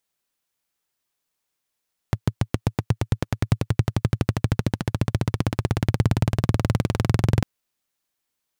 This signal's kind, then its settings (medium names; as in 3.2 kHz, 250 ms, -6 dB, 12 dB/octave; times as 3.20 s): single-cylinder engine model, changing speed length 5.30 s, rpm 800, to 2600, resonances 110 Hz